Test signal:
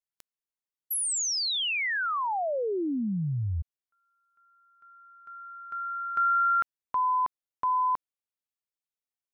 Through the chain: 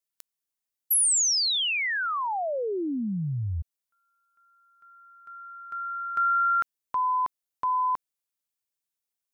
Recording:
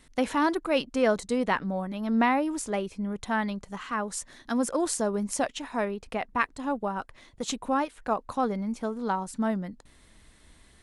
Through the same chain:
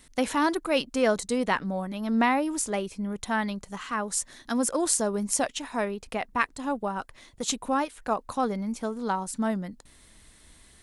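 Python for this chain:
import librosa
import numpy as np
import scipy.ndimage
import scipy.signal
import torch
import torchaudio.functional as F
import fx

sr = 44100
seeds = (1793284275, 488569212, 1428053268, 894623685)

y = fx.high_shelf(x, sr, hz=4700.0, db=8.5)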